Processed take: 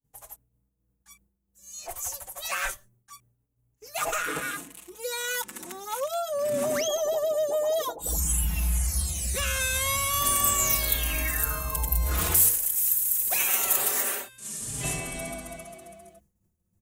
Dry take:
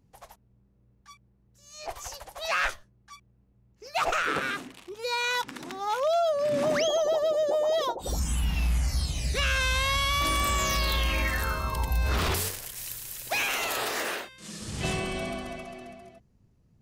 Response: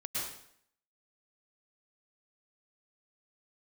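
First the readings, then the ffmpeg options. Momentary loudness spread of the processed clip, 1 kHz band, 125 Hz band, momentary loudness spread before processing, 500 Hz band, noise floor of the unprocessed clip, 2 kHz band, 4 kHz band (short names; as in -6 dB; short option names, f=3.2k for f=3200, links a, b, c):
15 LU, -3.0 dB, -2.0 dB, 13 LU, -2.0 dB, -64 dBFS, -3.0 dB, -3.0 dB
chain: -filter_complex "[0:a]agate=range=-33dB:threshold=-56dB:ratio=3:detection=peak,aexciter=amount=6.3:drive=5.6:freq=6.8k,asplit=2[a][b];[b]adelay=4.5,afreqshift=0.27[c];[a][c]amix=inputs=2:normalize=1"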